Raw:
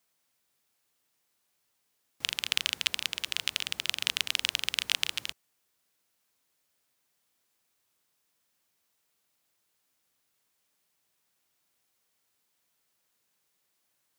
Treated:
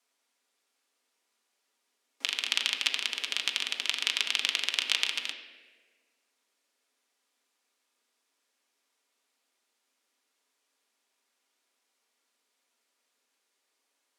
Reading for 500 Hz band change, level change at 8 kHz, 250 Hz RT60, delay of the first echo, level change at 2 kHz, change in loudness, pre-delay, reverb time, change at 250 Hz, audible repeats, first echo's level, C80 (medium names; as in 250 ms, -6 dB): +2.0 dB, -1.0 dB, 2.1 s, no echo, +2.0 dB, +1.0 dB, 4 ms, 1.4 s, 0.0 dB, no echo, no echo, 8.5 dB